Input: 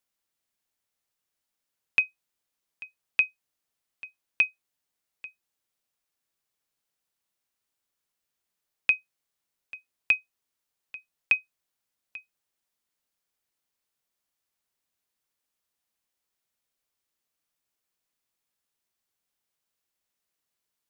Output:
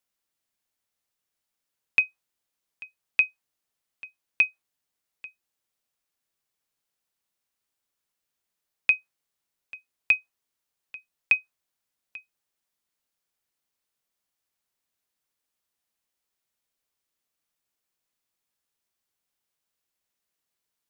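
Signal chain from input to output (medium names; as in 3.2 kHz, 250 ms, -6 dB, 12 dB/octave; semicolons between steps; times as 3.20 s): dynamic bell 1 kHz, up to +6 dB, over -42 dBFS, Q 0.73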